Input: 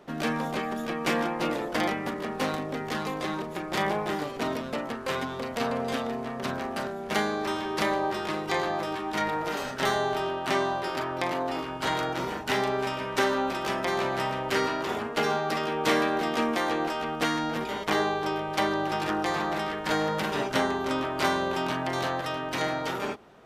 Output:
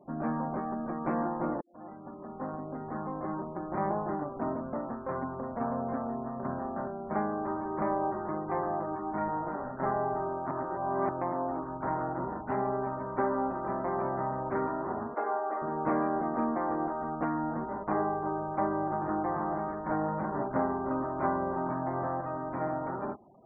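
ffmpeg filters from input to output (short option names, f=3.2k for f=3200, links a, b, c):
-filter_complex "[0:a]asettb=1/sr,asplit=3[a][b][c];[a]atrim=end=15.144[d];[b]atrim=start=15.14:end=15.62,asetpts=PTS-STARTPTS,afade=t=in:d=0.004:c=qsin,afade=t=out:st=0.476:d=0.004:c=qsin,highpass=f=370:w=0.5412,highpass=f=370:w=1.3066[e];[c]atrim=start=15.616[f];[d][e]acrossfade=d=0.004:c1=hsin:c2=qsin[g];[g][f]acrossfade=d=0.004:c1=qsin:c2=hsin,asplit=4[h][i][j][k];[h]atrim=end=1.61,asetpts=PTS-STARTPTS,afade=t=out:st=1.606:d=0.004:c=hsin[l];[i]atrim=start=1.61:end=10.512,asetpts=PTS-STARTPTS,afade=t=in:d=2.27:c=qsin[m];[j]atrim=start=10.508:end=11.092,asetpts=PTS-STARTPTS,areverse[n];[k]atrim=start=11.088[o];[l][m]concat=n=2:v=0:a=1[p];[p][n]acrossfade=d=0.004:c1=hsin:c2=hsin[q];[q][o]acrossfade=d=0.004:c1=hsin:c2=hsin,lowpass=f=1.2k:w=0.5412,lowpass=f=1.2k:w=1.3066,equalizer=f=450:w=6.3:g=-10.5,afftfilt=real='re*gte(hypot(re,im),0.00355)':imag='im*gte(hypot(re,im),0.00355)':win_size=1024:overlap=0.75,volume=-1.5dB"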